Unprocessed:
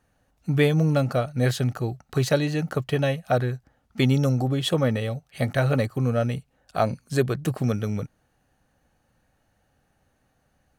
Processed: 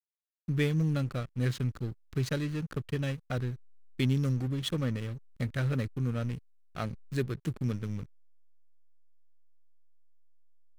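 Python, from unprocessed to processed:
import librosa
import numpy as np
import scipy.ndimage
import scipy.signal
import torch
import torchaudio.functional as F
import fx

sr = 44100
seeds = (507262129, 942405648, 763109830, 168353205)

y = fx.backlash(x, sr, play_db=-26.0)
y = fx.peak_eq(y, sr, hz=690.0, db=-13.0, octaves=1.1)
y = F.gain(torch.from_numpy(y), -5.5).numpy()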